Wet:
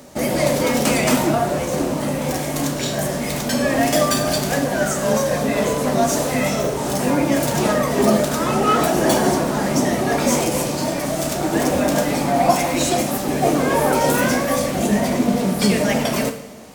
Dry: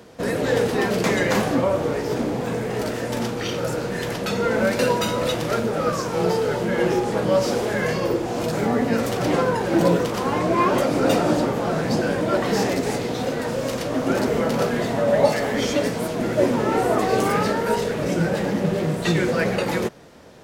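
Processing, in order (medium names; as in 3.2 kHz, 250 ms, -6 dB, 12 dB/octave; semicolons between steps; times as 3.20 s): tone controls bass +5 dB, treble +10 dB; wide varispeed 1.22×; two-slope reverb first 0.66 s, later 2.7 s, from -17 dB, DRR 6 dB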